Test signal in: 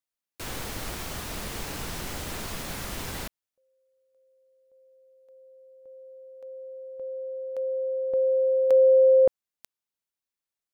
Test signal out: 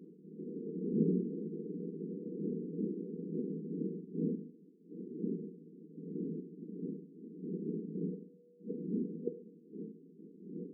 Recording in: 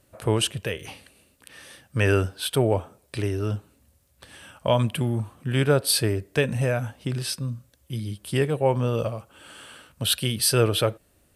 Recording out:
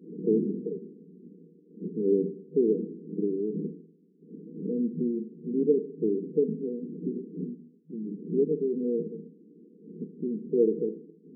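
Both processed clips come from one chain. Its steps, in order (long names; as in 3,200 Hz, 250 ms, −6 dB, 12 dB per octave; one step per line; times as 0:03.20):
wind on the microphone 280 Hz −38 dBFS
brick-wall band-pass 160–490 Hz
four-comb reverb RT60 0.68 s, combs from 33 ms, DRR 9.5 dB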